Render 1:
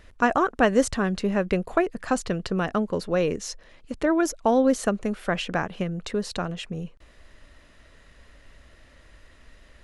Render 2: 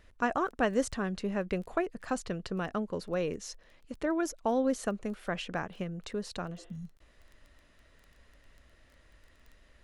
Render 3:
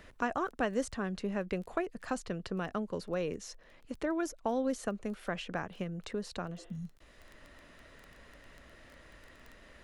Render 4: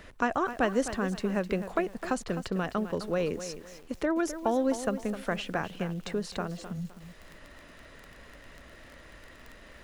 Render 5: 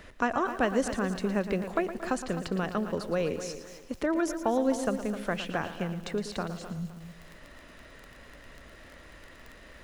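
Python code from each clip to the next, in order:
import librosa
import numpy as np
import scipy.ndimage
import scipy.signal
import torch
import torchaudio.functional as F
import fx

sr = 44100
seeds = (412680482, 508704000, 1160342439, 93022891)

y1 = fx.spec_repair(x, sr, seeds[0], start_s=6.6, length_s=0.33, low_hz=250.0, high_hz=3900.0, source='both')
y1 = fx.dmg_crackle(y1, sr, seeds[1], per_s=12.0, level_db=-36.0)
y1 = y1 * librosa.db_to_amplitude(-8.5)
y2 = fx.band_squash(y1, sr, depth_pct=40)
y2 = y2 * librosa.db_to_amplitude(-2.5)
y3 = fx.echo_crushed(y2, sr, ms=258, feedback_pct=35, bits=9, wet_db=-11.0)
y3 = y3 * librosa.db_to_amplitude(5.0)
y4 = fx.echo_feedback(y3, sr, ms=114, feedback_pct=44, wet_db=-12.0)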